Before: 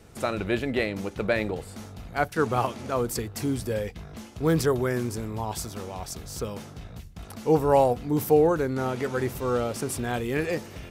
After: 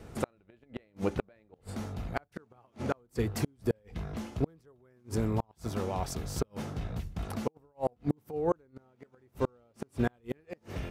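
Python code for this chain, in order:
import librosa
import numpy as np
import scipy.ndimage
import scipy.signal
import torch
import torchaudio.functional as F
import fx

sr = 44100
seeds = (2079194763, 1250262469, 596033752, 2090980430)

y = fx.peak_eq(x, sr, hz=14000.0, db=-8.5, octaves=2.8)
y = fx.over_compress(y, sr, threshold_db=-24.0, ratio=-0.5, at=(6.36, 8.61), fade=0.02)
y = fx.gate_flip(y, sr, shuts_db=-20.0, range_db=-39)
y = y * 10.0 ** (3.5 / 20.0)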